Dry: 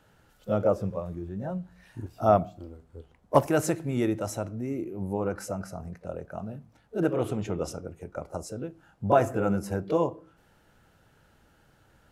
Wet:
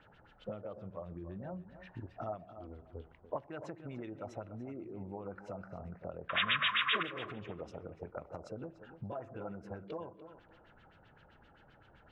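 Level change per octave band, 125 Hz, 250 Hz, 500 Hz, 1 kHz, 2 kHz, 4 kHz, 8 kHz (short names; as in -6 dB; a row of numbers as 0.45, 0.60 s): -14.5 dB, -15.5 dB, -16.0 dB, -11.5 dB, +3.5 dB, +10.5 dB, under -25 dB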